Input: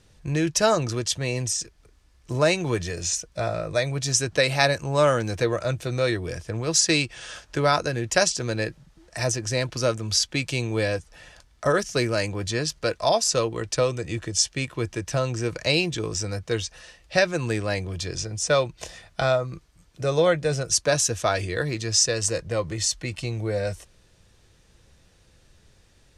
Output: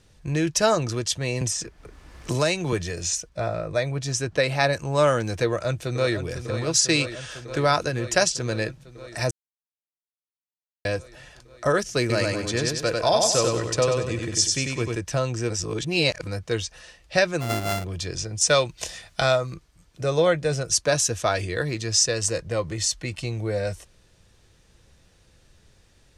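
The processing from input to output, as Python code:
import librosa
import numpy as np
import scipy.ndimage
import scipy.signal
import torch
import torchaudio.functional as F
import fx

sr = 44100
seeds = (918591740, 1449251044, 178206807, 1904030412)

y = fx.band_squash(x, sr, depth_pct=70, at=(1.41, 2.73))
y = fx.high_shelf(y, sr, hz=3200.0, db=-7.5, at=(3.29, 4.73))
y = fx.echo_throw(y, sr, start_s=5.45, length_s=0.7, ms=500, feedback_pct=80, wet_db=-9.5)
y = fx.echo_feedback(y, sr, ms=96, feedback_pct=41, wet_db=-3.0, at=(12.0, 14.96))
y = fx.sample_sort(y, sr, block=64, at=(17.4, 17.83), fade=0.02)
y = fx.high_shelf(y, sr, hz=2200.0, db=8.0, at=(18.41, 19.54))
y = fx.edit(y, sr, fx.silence(start_s=9.31, length_s=1.54),
    fx.reverse_span(start_s=15.5, length_s=0.77), tone=tone)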